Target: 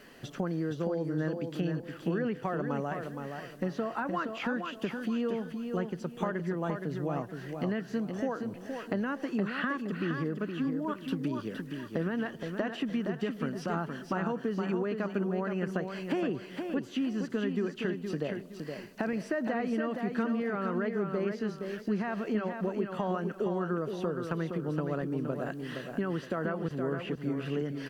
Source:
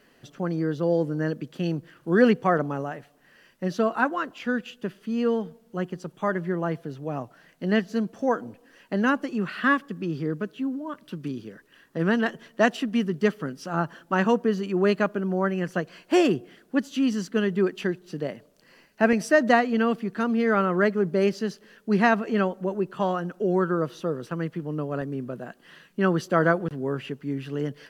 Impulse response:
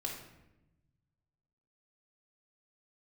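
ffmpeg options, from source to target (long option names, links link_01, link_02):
-filter_complex "[0:a]acrossover=split=3000[link_01][link_02];[link_02]acompressor=threshold=-52dB:ratio=4:attack=1:release=60[link_03];[link_01][link_03]amix=inputs=2:normalize=0,alimiter=limit=-16dB:level=0:latency=1,acompressor=threshold=-36dB:ratio=5,aecho=1:1:468|936|1404|1872:0.501|0.155|0.0482|0.0149,volume=5.5dB"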